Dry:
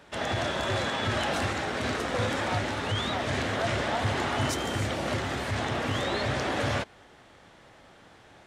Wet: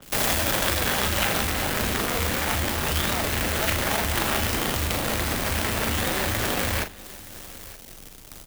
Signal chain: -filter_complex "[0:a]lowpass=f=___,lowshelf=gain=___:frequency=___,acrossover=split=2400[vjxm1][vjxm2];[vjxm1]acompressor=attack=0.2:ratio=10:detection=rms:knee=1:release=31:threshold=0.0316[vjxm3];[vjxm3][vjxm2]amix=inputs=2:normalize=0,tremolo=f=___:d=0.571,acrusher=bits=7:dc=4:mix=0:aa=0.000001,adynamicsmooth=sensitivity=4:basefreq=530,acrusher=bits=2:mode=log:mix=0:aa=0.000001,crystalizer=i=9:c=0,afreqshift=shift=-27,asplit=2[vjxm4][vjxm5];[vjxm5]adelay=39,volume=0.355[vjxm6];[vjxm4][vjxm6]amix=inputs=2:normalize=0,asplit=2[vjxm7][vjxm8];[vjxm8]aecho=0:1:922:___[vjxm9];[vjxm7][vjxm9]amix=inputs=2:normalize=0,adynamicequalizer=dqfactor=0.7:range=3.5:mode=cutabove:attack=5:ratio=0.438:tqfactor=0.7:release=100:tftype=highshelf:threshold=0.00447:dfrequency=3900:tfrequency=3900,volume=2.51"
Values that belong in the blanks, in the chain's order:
8.8k, 10, 290, 220, 0.0891